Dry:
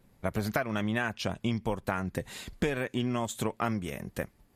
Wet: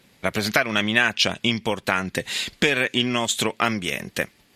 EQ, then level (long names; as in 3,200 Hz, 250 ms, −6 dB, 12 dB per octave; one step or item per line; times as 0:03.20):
meter weighting curve D
+7.5 dB